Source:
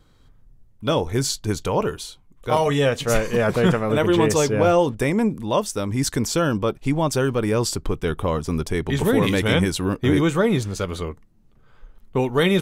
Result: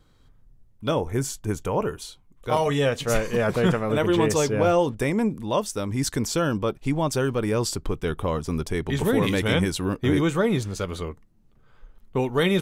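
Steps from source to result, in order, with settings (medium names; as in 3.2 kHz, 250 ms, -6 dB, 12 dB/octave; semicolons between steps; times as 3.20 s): 0.91–2.02 s: peaking EQ 4.2 kHz -14 dB 0.68 oct; trim -3 dB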